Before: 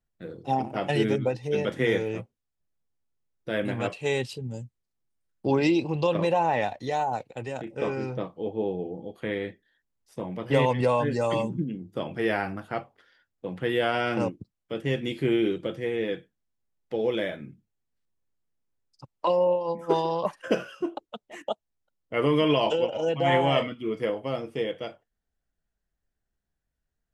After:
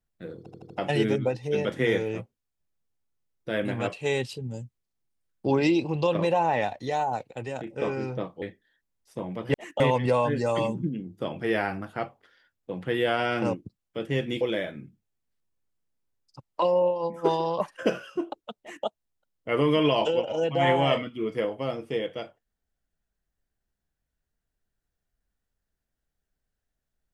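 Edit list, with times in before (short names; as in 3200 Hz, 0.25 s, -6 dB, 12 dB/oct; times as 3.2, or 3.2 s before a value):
0.38 stutter in place 0.08 s, 5 plays
8.42–9.43 cut
15.16–17.06 cut
21.25–21.51 copy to 10.55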